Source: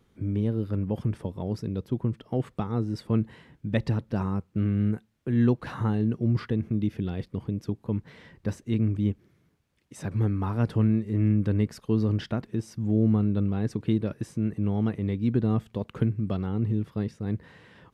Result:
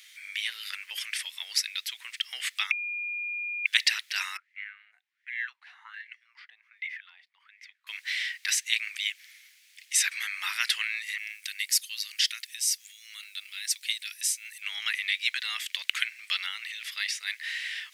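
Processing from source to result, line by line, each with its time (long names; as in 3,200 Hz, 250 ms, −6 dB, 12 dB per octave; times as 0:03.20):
0:02.71–0:03.66: beep over 2,420 Hz −12.5 dBFS
0:04.37–0:07.87: LFO wah 1.3 Hz 700–2,100 Hz, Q 9.5
0:11.18–0:14.62: first difference
whole clip: Chebyshev high-pass filter 2,000 Hz, order 4; every bin compressed towards the loudest bin 10 to 1; level +8.5 dB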